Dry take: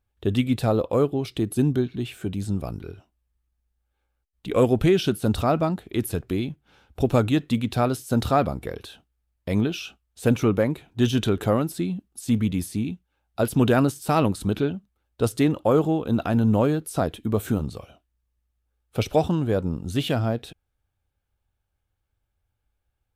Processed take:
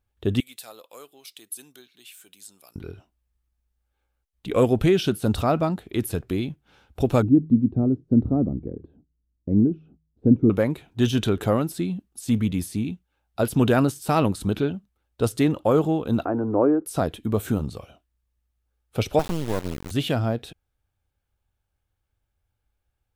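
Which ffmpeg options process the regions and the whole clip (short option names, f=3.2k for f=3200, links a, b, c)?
-filter_complex "[0:a]asettb=1/sr,asplit=3[a][b][c];[a]atrim=end=0.404[d];[b]atrim=start=0.4:end=2.76,asetpts=PTS-STARTPTS,afade=t=in:d=0.004:c=qsin,afade=t=out:st=2.356:d=0.004:c=qsin,highpass=f=240:p=1,aderivative[e];[c]atrim=start=2.756[f];[d][e]acrossfade=d=0.004:c1=hsin:c2=qsin[g];[g][f]acrossfade=d=0.004:c1=qsin:c2=hsin,asettb=1/sr,asplit=3[h][i][j];[h]atrim=end=7.224[k];[i]atrim=start=7.22:end=10.5,asetpts=PTS-STARTPTS,afade=t=in:d=0.004:c=qsin,afade=t=out:st=3.276:d=0.004:c=qsin,lowpass=f=290:t=q:w=2.1,bandreject=f=78.74:t=h:w=4,bandreject=f=157.48:t=h:w=4[l];[j]atrim=start=10.496[m];[k][l]acrossfade=d=0.004:c1=hsin:c2=qsin[n];[n][m]acrossfade=d=0.004:c1=qsin:c2=hsin,asettb=1/sr,asplit=3[o][p][q];[o]atrim=end=16.254[r];[p]atrim=start=16.25:end=16.86,asetpts=PTS-STARTPTS,afade=t=in:d=0.004:c=qsin,afade=t=out:st=0.606:d=0.004:c=qsin,lowpass=f=1.4k:w=0.5412,lowpass=f=1.4k:w=1.3066,lowshelf=f=240:t=q:w=3:g=-8.5[s];[q]atrim=start=16.856[t];[r][s]acrossfade=d=0.004:c1=hsin:c2=qsin[u];[u][t]acrossfade=d=0.004:c1=qsin:c2=hsin,asettb=1/sr,asplit=3[v][w][x];[v]atrim=end=19.194[y];[w]atrim=start=19.19:end=19.91,asetpts=PTS-STARTPTS,afade=t=in:d=0.004:c=qsin,afade=t=out:st=0.716:d=0.004:c=qsin,highpass=140,acrusher=bits=3:dc=4:mix=0:aa=0.000001[z];[x]atrim=start=19.906[aa];[y][z]acrossfade=d=0.004:c1=hsin:c2=qsin[ab];[ab][aa]acrossfade=d=0.004:c1=qsin:c2=hsin"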